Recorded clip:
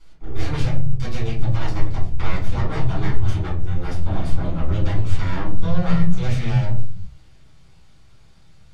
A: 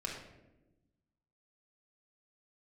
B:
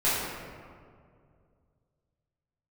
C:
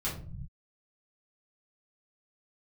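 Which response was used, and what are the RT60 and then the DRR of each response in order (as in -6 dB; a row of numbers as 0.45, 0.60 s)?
C; 1.0 s, 2.2 s, not exponential; -2.5, -11.5, -8.0 dB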